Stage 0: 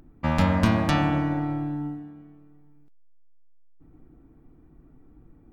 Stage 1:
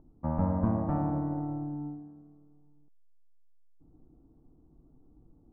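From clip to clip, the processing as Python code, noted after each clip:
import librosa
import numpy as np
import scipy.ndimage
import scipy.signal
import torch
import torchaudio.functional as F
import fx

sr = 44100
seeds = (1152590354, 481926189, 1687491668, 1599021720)

y = scipy.signal.sosfilt(scipy.signal.butter(4, 1000.0, 'lowpass', fs=sr, output='sos'), x)
y = y * librosa.db_to_amplitude(-6.5)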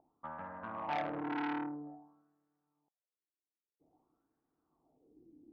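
y = fx.wah_lfo(x, sr, hz=0.51, low_hz=310.0, high_hz=1700.0, q=4.3)
y = fx.transformer_sat(y, sr, knee_hz=1600.0)
y = y * librosa.db_to_amplitude(7.0)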